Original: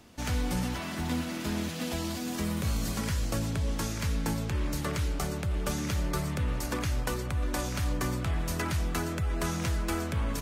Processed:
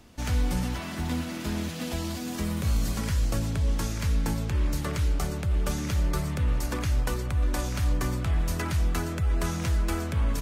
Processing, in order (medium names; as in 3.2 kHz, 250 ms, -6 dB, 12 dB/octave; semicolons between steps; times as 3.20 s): bass shelf 64 Hz +10.5 dB